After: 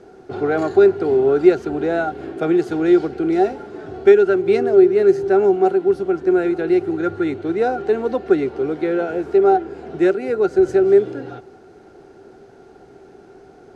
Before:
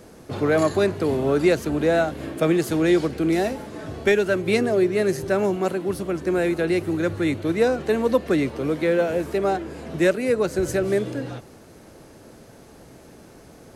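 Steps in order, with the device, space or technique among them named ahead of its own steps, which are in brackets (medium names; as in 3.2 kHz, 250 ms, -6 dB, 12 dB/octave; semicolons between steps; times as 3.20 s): inside a cardboard box (low-pass 5.6 kHz 12 dB/octave; small resonant body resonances 390/750/1400 Hz, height 17 dB, ringing for 55 ms); trim -5.5 dB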